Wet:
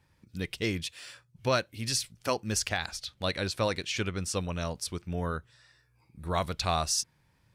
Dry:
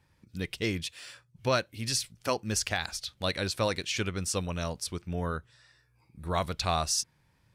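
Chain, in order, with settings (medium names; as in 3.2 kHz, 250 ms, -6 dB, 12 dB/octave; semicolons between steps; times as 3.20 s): 2.69–4.75 s: treble shelf 7 kHz -5 dB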